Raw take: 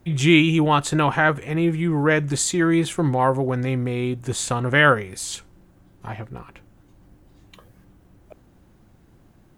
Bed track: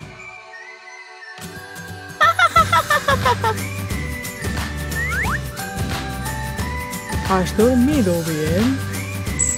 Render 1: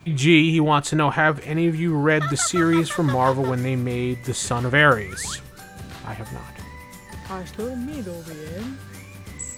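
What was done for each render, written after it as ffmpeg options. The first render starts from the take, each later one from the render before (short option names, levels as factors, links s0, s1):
-filter_complex "[1:a]volume=0.188[s0];[0:a][s0]amix=inputs=2:normalize=0"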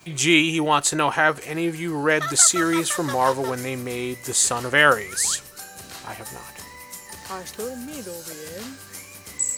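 -af "bass=f=250:g=-12,treble=f=4000:g=10,bandreject=f=3500:w=17"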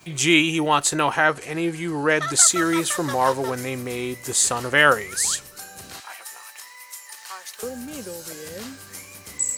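-filter_complex "[0:a]asettb=1/sr,asplit=3[s0][s1][s2];[s0]atrim=end=1.274[s3];[s1]atrim=start=1.27:end=2.37,asetpts=PTS-STARTPTS,afade=t=in:d=0.004:c=qsin,afade=t=out:st=1.096:d=0.004:c=qsin,lowpass=f=11000:w=0.5412,lowpass=f=11000:w=1.3066[s4];[s2]atrim=start=2.366[s5];[s3][s4]acrossfade=d=0.004:c1=hsin:c2=qsin[s6];[s6][s5]acrossfade=d=0.004:c1=qsin:c2=hsin,asettb=1/sr,asplit=3[s7][s8][s9];[s7]atrim=end=6.004[s10];[s8]atrim=start=6:end=7.63,asetpts=PTS-STARTPTS,afade=t=in:d=0.004:c=qsin,afade=t=out:st=1.626:d=0.004:c=qsin,highpass=1100[s11];[s9]atrim=start=7.626[s12];[s10][s11]acrossfade=d=0.004:c1=hsin:c2=qsin[s13];[s13][s12]acrossfade=d=0.004:c1=qsin:c2=hsin"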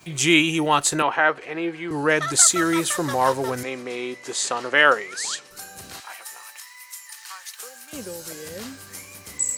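-filter_complex "[0:a]asettb=1/sr,asplit=3[s0][s1][s2];[s0]atrim=end=1.024[s3];[s1]atrim=start=1.02:end=1.91,asetpts=PTS-STARTPTS,afade=t=in:d=0.004:c=qsin,afade=t=out:st=0.886:d=0.004:c=qsin,acrossover=split=270 4000:gain=0.224 1 0.0794[s4][s5][s6];[s4][s5][s6]amix=inputs=3:normalize=0[s7];[s2]atrim=start=1.906[s8];[s3][s7]acrossfade=d=0.004:c1=hsin:c2=qsin[s9];[s9][s8]acrossfade=d=0.004:c1=qsin:c2=hsin,asettb=1/sr,asplit=3[s10][s11][s12];[s10]atrim=end=3.634[s13];[s11]atrim=start=3.63:end=5.51,asetpts=PTS-STARTPTS,afade=t=in:d=0.004:c=qsin,afade=t=out:st=1.876:d=0.004:c=qsin,highpass=290,lowpass=5400[s14];[s12]atrim=start=5.506[s15];[s13][s14]acrossfade=d=0.004:c1=hsin:c2=qsin[s16];[s16][s15]acrossfade=d=0.004:c1=qsin:c2=hsin,asettb=1/sr,asplit=3[s17][s18][s19];[s17]atrim=end=6.584[s20];[s18]atrim=start=6.58:end=7.93,asetpts=PTS-STARTPTS,afade=t=in:d=0.004:c=qsin,afade=t=out:st=1.346:d=0.004:c=qsin,highpass=1100[s21];[s19]atrim=start=7.926[s22];[s20][s21]acrossfade=d=0.004:c1=hsin:c2=qsin[s23];[s23][s22]acrossfade=d=0.004:c1=qsin:c2=hsin"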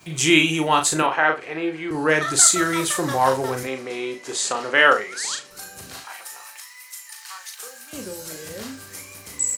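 -filter_complex "[0:a]asplit=2[s0][s1];[s1]adelay=38,volume=0.501[s2];[s0][s2]amix=inputs=2:normalize=0,aecho=1:1:72:0.112"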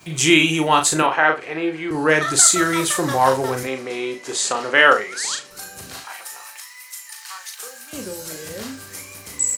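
-af "volume=1.33,alimiter=limit=0.891:level=0:latency=1"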